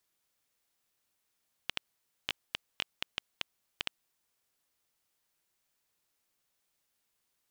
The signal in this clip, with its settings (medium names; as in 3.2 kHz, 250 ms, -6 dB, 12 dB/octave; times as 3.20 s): random clicks 4.8 per s -13 dBFS 2.55 s